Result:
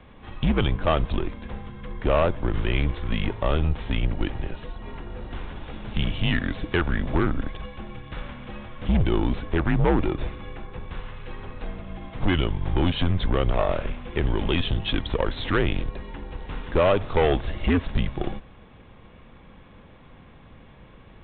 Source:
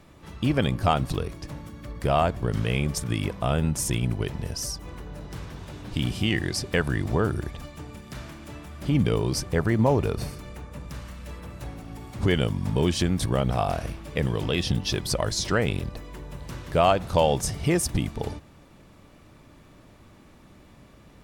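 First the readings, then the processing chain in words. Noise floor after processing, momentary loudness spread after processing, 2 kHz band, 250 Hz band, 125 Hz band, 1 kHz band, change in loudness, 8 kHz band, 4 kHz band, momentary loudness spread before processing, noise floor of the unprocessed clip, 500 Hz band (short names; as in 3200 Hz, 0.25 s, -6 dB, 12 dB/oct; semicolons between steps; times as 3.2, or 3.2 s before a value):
-49 dBFS, 16 LU, +1.5 dB, +0.5 dB, -0.5 dB, -1.5 dB, 0.0 dB, under -40 dB, -1.0 dB, 18 LU, -52 dBFS, +0.5 dB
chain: added harmonics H 5 -12 dB, 8 -21 dB, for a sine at -7.5 dBFS; frequency shift -86 Hz; gain -3 dB; G.726 40 kbps 8000 Hz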